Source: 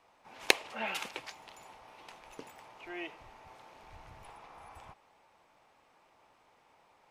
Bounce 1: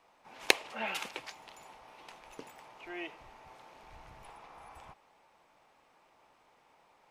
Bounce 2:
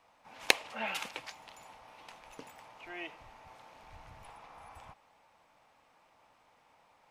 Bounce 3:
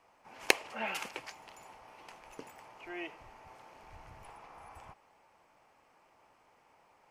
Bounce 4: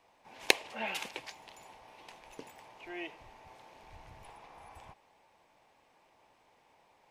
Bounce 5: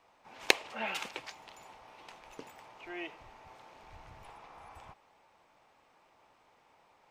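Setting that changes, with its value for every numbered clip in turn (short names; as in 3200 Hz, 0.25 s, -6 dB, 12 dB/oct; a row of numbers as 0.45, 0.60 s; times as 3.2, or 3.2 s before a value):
bell, frequency: 93, 380, 3700, 1300, 11000 Hz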